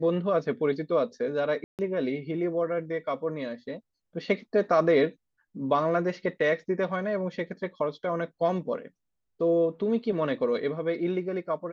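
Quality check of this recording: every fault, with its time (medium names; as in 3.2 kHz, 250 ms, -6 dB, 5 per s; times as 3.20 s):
1.64–1.79 s: dropout 148 ms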